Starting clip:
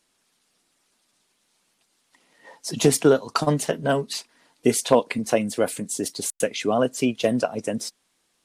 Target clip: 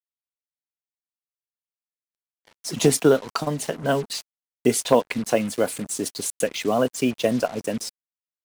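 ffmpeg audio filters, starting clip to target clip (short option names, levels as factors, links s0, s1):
-filter_complex "[0:a]acrusher=bits=5:mix=0:aa=0.5,asettb=1/sr,asplit=3[s0][s1][s2];[s0]atrim=end=3.294[s3];[s1]atrim=start=3.29:end=3.88,asetpts=PTS-STARTPTS,afade=t=in:d=0.004:c=qsin,afade=t=out:st=0.586:d=0.004:c=qsin,acompressor=threshold=0.0794:ratio=4[s4];[s2]atrim=start=3.876[s5];[s3][s4]acrossfade=d=0.004:c1=hsin:c2=qsin[s6];[s6][s5]acrossfade=d=0.004:c1=qsin:c2=hsin"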